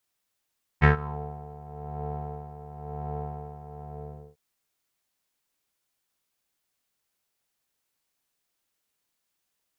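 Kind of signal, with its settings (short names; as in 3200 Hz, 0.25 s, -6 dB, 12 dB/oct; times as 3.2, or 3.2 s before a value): synth patch with tremolo D3, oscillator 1 square, interval +19 st, oscillator 2 level -7 dB, sub -2 dB, filter lowpass, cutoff 530 Hz, Q 3.8, filter envelope 2 oct, filter decay 0.37 s, filter sustain 25%, attack 31 ms, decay 0.12 s, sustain -23 dB, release 0.56 s, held 2.99 s, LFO 0.97 Hz, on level 10 dB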